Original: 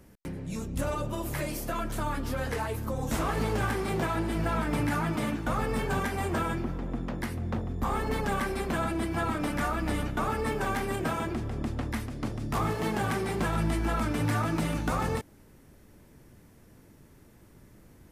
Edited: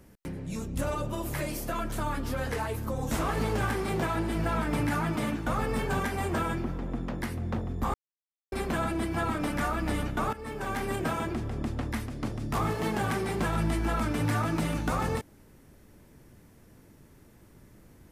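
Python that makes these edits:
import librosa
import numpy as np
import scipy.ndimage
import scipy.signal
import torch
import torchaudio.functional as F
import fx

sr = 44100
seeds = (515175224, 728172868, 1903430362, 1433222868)

y = fx.edit(x, sr, fx.silence(start_s=7.94, length_s=0.58),
    fx.fade_in_from(start_s=10.33, length_s=0.56, floor_db=-15.0), tone=tone)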